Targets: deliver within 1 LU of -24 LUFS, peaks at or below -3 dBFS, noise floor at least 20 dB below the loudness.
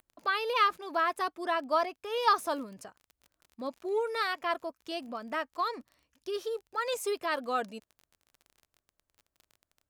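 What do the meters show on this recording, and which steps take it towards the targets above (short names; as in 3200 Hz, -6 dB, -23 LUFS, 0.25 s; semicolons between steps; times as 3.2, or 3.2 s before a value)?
ticks 28/s; loudness -31.5 LUFS; peak -13.0 dBFS; loudness target -24.0 LUFS
-> de-click; gain +7.5 dB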